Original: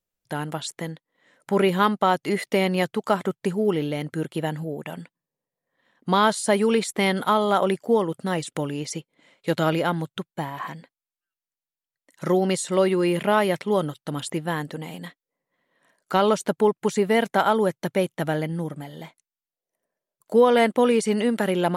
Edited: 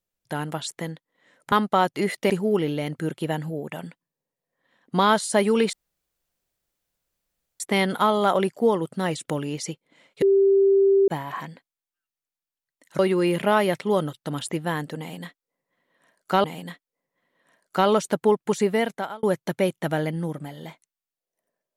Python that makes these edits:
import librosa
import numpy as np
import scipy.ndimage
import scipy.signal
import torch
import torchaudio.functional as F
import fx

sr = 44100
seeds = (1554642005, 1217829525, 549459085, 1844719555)

y = fx.edit(x, sr, fx.cut(start_s=1.52, length_s=0.29),
    fx.cut(start_s=2.59, length_s=0.85),
    fx.insert_room_tone(at_s=6.87, length_s=1.87),
    fx.bleep(start_s=9.49, length_s=0.86, hz=392.0, db=-14.0),
    fx.cut(start_s=12.26, length_s=0.54),
    fx.repeat(start_s=14.8, length_s=1.45, count=2),
    fx.fade_out_span(start_s=17.0, length_s=0.59), tone=tone)